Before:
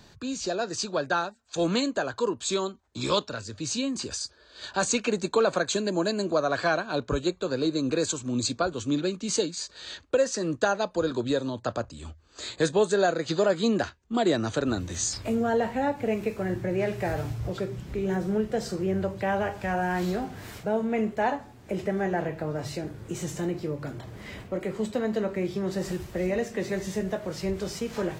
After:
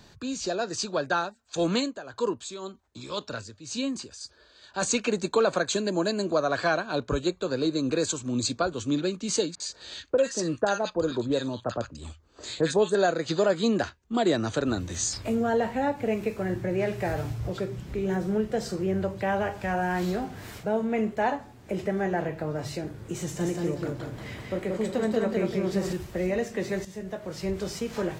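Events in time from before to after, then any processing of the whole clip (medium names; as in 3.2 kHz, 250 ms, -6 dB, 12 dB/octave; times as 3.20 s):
1.76–4.82 s: tremolo 1.9 Hz, depth 77%
9.55–12.95 s: bands offset in time lows, highs 50 ms, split 1.4 kHz
23.22–25.93 s: feedback delay 183 ms, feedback 32%, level -3 dB
26.85–27.55 s: fade in, from -12 dB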